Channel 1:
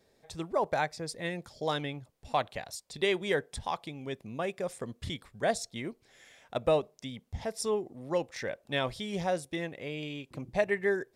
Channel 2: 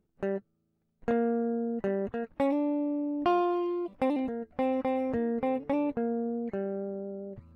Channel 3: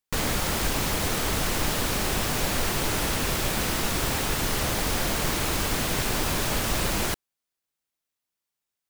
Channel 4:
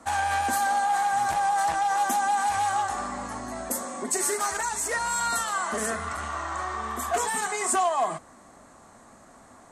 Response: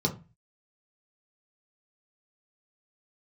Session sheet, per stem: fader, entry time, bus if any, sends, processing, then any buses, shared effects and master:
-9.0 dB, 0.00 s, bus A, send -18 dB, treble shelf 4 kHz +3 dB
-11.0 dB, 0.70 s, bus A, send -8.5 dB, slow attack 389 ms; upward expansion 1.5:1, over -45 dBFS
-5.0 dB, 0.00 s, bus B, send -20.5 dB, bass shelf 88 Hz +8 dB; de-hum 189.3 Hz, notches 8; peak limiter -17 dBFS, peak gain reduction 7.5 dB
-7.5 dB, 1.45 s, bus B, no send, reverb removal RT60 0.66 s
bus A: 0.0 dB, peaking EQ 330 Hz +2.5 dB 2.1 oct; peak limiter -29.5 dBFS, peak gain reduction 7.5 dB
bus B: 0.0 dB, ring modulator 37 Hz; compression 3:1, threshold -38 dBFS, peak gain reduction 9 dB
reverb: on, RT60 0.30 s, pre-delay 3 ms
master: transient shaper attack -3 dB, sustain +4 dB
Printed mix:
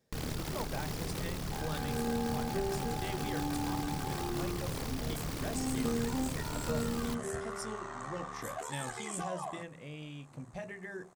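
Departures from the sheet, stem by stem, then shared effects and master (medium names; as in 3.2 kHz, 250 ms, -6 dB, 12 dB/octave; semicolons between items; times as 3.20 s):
stem 4: missing reverb removal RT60 0.66 s; master: missing transient shaper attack -3 dB, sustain +4 dB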